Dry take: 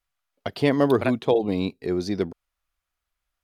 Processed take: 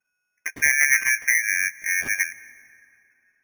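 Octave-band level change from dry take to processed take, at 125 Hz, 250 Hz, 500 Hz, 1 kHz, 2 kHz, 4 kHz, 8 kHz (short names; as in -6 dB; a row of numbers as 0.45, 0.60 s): under -20 dB, under -25 dB, under -25 dB, -15.0 dB, +17.5 dB, -0.5 dB, n/a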